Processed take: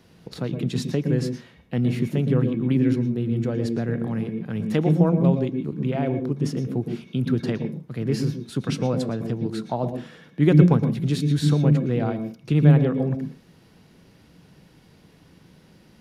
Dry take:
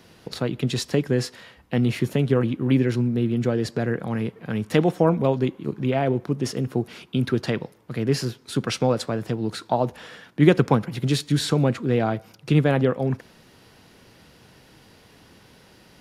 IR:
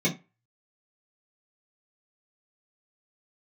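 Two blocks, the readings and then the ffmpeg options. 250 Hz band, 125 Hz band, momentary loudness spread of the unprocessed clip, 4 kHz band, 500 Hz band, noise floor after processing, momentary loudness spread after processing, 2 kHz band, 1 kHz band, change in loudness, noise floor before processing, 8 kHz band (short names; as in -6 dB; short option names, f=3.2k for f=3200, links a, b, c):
+1.5 dB, +3.0 dB, 9 LU, -6.0 dB, -3.0 dB, -55 dBFS, 12 LU, -6.0 dB, -5.5 dB, +0.5 dB, -53 dBFS, -6.5 dB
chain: -filter_complex "[0:a]lowshelf=f=310:g=6.5,asplit=2[a][b];[1:a]atrim=start_sample=2205,adelay=111[c];[b][c]afir=irnorm=-1:irlink=0,volume=-20dB[d];[a][d]amix=inputs=2:normalize=0,volume=-6.5dB"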